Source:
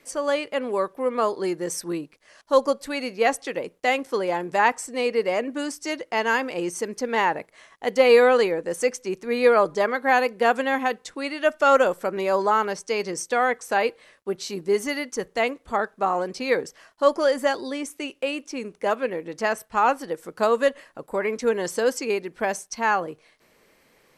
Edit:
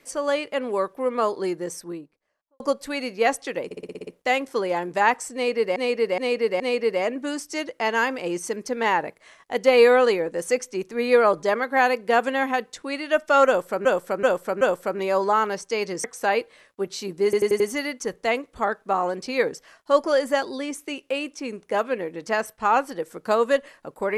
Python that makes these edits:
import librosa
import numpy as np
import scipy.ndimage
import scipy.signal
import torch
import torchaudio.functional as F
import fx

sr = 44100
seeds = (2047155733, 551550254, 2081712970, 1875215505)

y = fx.studio_fade_out(x, sr, start_s=1.32, length_s=1.28)
y = fx.edit(y, sr, fx.stutter(start_s=3.65, slice_s=0.06, count=8),
    fx.repeat(start_s=4.92, length_s=0.42, count=4),
    fx.repeat(start_s=11.79, length_s=0.38, count=4),
    fx.cut(start_s=13.22, length_s=0.3),
    fx.stutter(start_s=14.72, slice_s=0.09, count=5), tone=tone)